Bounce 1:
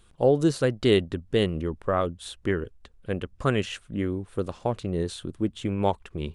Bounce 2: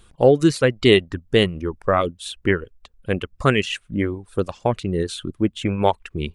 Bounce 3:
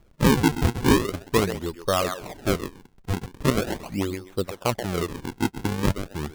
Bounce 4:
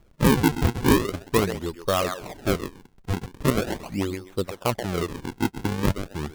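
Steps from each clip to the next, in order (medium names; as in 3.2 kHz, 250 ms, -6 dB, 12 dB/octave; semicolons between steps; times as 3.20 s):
reverb removal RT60 1.1 s; dynamic bell 2.3 kHz, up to +6 dB, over -48 dBFS, Q 1.5; trim +6.5 dB
thinning echo 130 ms, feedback 22%, high-pass 660 Hz, level -6 dB; decimation with a swept rate 42×, swing 160% 0.41 Hz; trim -4.5 dB
self-modulated delay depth 0.057 ms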